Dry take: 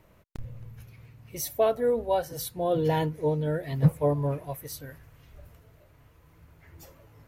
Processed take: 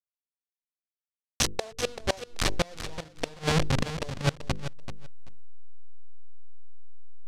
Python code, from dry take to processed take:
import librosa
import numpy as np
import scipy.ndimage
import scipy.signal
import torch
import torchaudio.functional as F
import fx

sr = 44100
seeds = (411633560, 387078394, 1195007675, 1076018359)

p1 = fx.delta_hold(x, sr, step_db=-23.5)
p2 = scipy.signal.sosfilt(scipy.signal.butter(2, 8500.0, 'lowpass', fs=sr, output='sos'), p1)
p3 = fx.peak_eq(p2, sr, hz=4100.0, db=6.0, octaves=2.2)
p4 = fx.hum_notches(p3, sr, base_hz=50, count=10)
p5 = fx.gate_flip(p4, sr, shuts_db=-18.0, range_db=-28)
p6 = p5 + fx.echo_feedback(p5, sr, ms=385, feedback_pct=18, wet_db=-11, dry=0)
y = p6 * 10.0 ** (7.5 / 20.0)